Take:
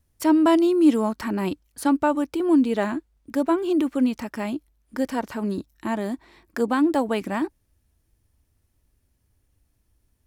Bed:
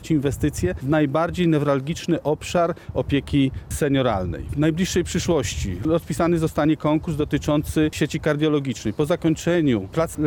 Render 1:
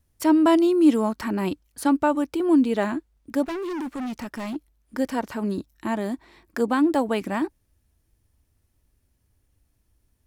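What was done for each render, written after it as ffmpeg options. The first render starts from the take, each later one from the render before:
-filter_complex "[0:a]asettb=1/sr,asplit=3[a][b][c];[a]atrim=end=3.434[d];[b]atrim=start=3.43:end=4.56,asetpts=PTS-STARTPTS,afade=t=in:d=0.004:c=qsin,afade=t=out:st=1.126:d=0.004:c=qsin,asoftclip=type=hard:threshold=-28dB[e];[c]atrim=start=4.556[f];[d][e]acrossfade=d=0.004:c1=hsin:c2=qsin[g];[g][f]acrossfade=d=0.004:c1=qsin:c2=hsin"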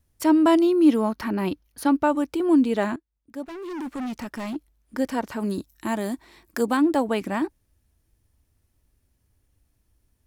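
-filter_complex "[0:a]asettb=1/sr,asplit=3[a][b][c];[a]atrim=end=0.634[d];[b]atrim=start=0.63:end=2.04,asetpts=PTS-STARTPTS,afade=t=in:d=0.004:c=qsin,afade=t=out:st=1.406:d=0.004:c=qsin,equalizer=f=7.8k:t=o:w=0.27:g=-12.5[e];[c]atrim=start=2.036[f];[d][e]acrossfade=d=0.004:c1=hsin:c2=qsin[g];[g][f]acrossfade=d=0.004:c1=qsin:c2=hsin,asettb=1/sr,asplit=3[h][i][j];[h]atrim=end=5.404[k];[i]atrim=start=5.4:end=6.77,asetpts=PTS-STARTPTS,afade=t=in:d=0.004:c=qsin,afade=t=out:st=1.366:d=0.004:c=qsin,aemphasis=mode=production:type=cd[l];[j]atrim=start=6.766[m];[k][l]acrossfade=d=0.004:c1=hsin:c2=qsin[n];[n][m]acrossfade=d=0.004:c1=qsin:c2=hsin,asplit=2[o][p];[o]atrim=end=2.96,asetpts=PTS-STARTPTS,afade=t=out:st=2.956:d=0.004:c=hsin:silence=0.11885[q];[p]atrim=start=2.96,asetpts=PTS-STARTPTS,afade=t=in:d=0.96:c=qua:silence=0.11885[r];[q][r]concat=n=2:v=0:a=1"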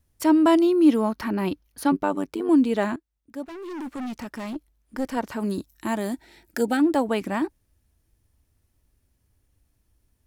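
-filter_complex "[0:a]asettb=1/sr,asplit=3[a][b][c];[a]atrim=end=1.924[d];[b]atrim=start=1.92:end=2.49,asetpts=PTS-STARTPTS,afade=t=in:d=0.004:c=qsin,afade=t=out:st=0.566:d=0.004:c=qsin,tremolo=f=98:d=0.824[e];[c]atrim=start=2.486[f];[d][e]acrossfade=d=0.004:c1=hsin:c2=qsin[g];[g][f]acrossfade=d=0.004:c1=qsin:c2=hsin,asettb=1/sr,asplit=3[h][i][j];[h]atrim=end=3.464[k];[i]atrim=start=3.46:end=5.17,asetpts=PTS-STARTPTS,afade=t=in:d=0.004:c=qsin,afade=t=out:st=1.706:d=0.004:c=qsin,aeval=exprs='(tanh(8.91*val(0)+0.4)-tanh(0.4))/8.91':c=same[l];[j]atrim=start=5.166[m];[k][l]acrossfade=d=0.004:c1=hsin:c2=qsin[n];[n][m]acrossfade=d=0.004:c1=qsin:c2=hsin,asettb=1/sr,asplit=3[o][p][q];[o]atrim=end=6.134[r];[p]atrim=start=6.13:end=6.8,asetpts=PTS-STARTPTS,afade=t=in:d=0.004:c=qsin,afade=t=out:st=0.666:d=0.004:c=qsin,asuperstop=centerf=1100:order=12:qfactor=4[s];[q]atrim=start=6.796[t];[r][s]acrossfade=d=0.004:c1=hsin:c2=qsin[u];[u][t]acrossfade=d=0.004:c1=qsin:c2=hsin"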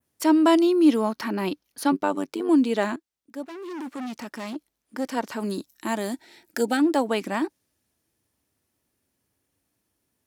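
-af "highpass=200,adynamicequalizer=threshold=0.00398:dfrequency=5200:dqfactor=0.72:tfrequency=5200:tqfactor=0.72:attack=5:release=100:ratio=0.375:range=2.5:mode=boostabove:tftype=bell"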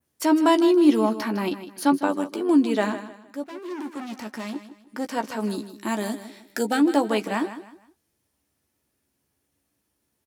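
-filter_complex "[0:a]asplit=2[a][b];[b]adelay=14,volume=-8dB[c];[a][c]amix=inputs=2:normalize=0,aecho=1:1:156|312|468:0.237|0.0735|0.0228"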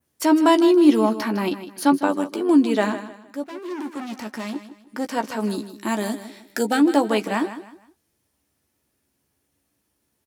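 -af "volume=2.5dB"

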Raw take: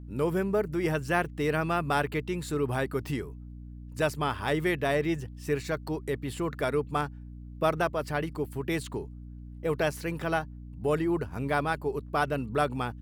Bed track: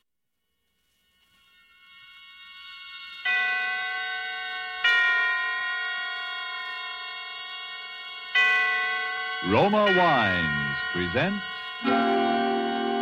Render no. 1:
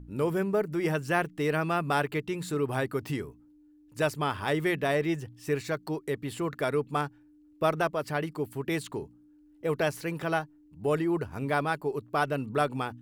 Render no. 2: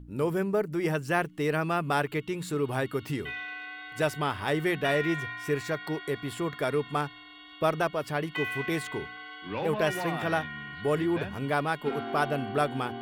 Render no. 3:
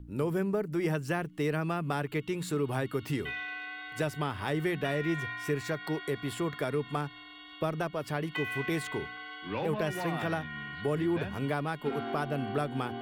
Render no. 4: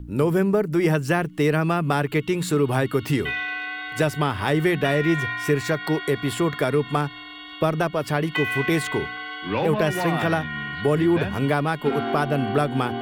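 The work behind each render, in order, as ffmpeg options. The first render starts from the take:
-af "bandreject=f=60:t=h:w=4,bandreject=f=120:t=h:w=4,bandreject=f=180:t=h:w=4,bandreject=f=240:t=h:w=4"
-filter_complex "[1:a]volume=-13dB[a];[0:a][a]amix=inputs=2:normalize=0"
-filter_complex "[0:a]acrossover=split=300[a][b];[b]acompressor=threshold=-31dB:ratio=4[c];[a][c]amix=inputs=2:normalize=0"
-af "volume=10dB"

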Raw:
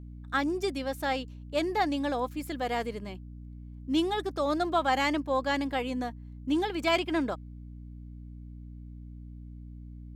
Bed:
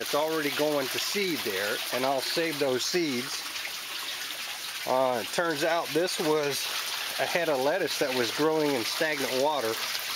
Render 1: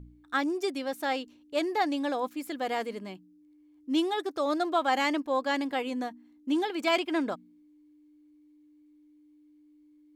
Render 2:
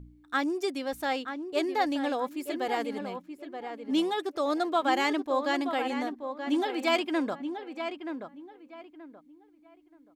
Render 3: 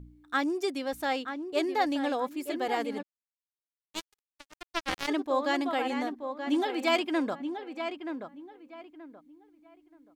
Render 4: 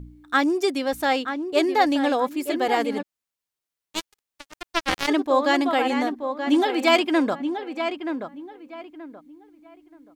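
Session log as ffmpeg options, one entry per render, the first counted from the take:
-af "bandreject=f=60:t=h:w=4,bandreject=f=120:t=h:w=4,bandreject=f=180:t=h:w=4,bandreject=f=240:t=h:w=4"
-filter_complex "[0:a]asplit=2[a][b];[b]adelay=928,lowpass=f=2.2k:p=1,volume=-7.5dB,asplit=2[c][d];[d]adelay=928,lowpass=f=2.2k:p=1,volume=0.27,asplit=2[e][f];[f]adelay=928,lowpass=f=2.2k:p=1,volume=0.27[g];[a][c][e][g]amix=inputs=4:normalize=0"
-filter_complex "[0:a]asplit=3[a][b][c];[a]afade=t=out:st=3.01:d=0.02[d];[b]acrusher=bits=2:mix=0:aa=0.5,afade=t=in:st=3.01:d=0.02,afade=t=out:st=5.07:d=0.02[e];[c]afade=t=in:st=5.07:d=0.02[f];[d][e][f]amix=inputs=3:normalize=0"
-af "volume=8dB"

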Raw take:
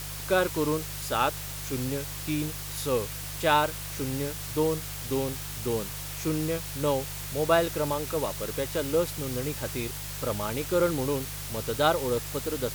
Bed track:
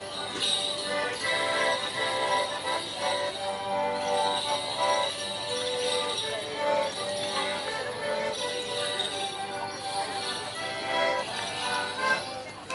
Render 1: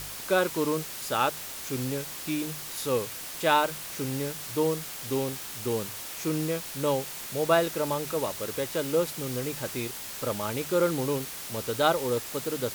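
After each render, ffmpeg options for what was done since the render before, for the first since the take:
-af "bandreject=f=50:t=h:w=4,bandreject=f=100:t=h:w=4,bandreject=f=150:t=h:w=4"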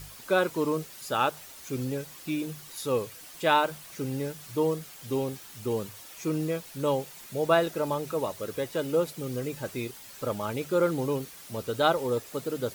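-af "afftdn=nr=10:nf=-39"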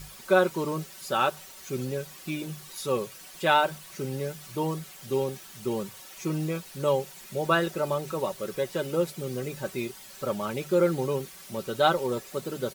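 -af "highshelf=f=12k:g=-3,aecho=1:1:5.3:0.59"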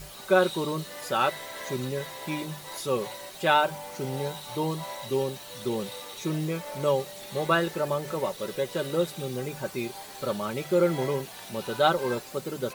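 -filter_complex "[1:a]volume=-13dB[a];[0:a][a]amix=inputs=2:normalize=0"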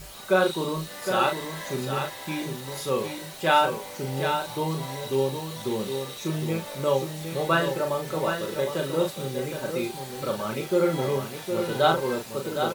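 -filter_complex "[0:a]asplit=2[a][b];[b]adelay=37,volume=-5dB[c];[a][c]amix=inputs=2:normalize=0,aecho=1:1:761:0.447"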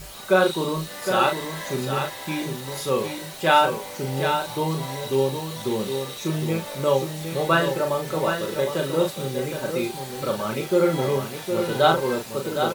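-af "volume=3dB"

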